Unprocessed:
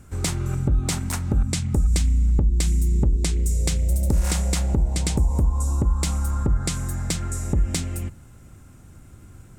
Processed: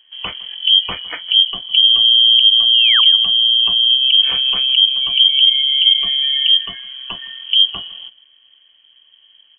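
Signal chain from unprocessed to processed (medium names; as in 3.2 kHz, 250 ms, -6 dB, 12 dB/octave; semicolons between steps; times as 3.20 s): spectral noise reduction 12 dB; 0.60–1.22 s: treble shelf 2.4 kHz +6.5 dB; 2.73–3.01 s: painted sound rise 220–2300 Hz -27 dBFS; feedback delay 157 ms, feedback 18%, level -21.5 dB; frequency inversion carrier 3.2 kHz; trim +5.5 dB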